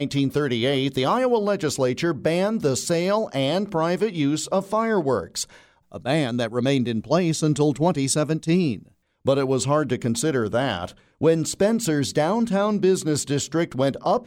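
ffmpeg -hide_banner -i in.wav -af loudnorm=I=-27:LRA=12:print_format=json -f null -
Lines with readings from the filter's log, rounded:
"input_i" : "-22.5",
"input_tp" : "-7.0",
"input_lra" : "1.8",
"input_thresh" : "-32.7",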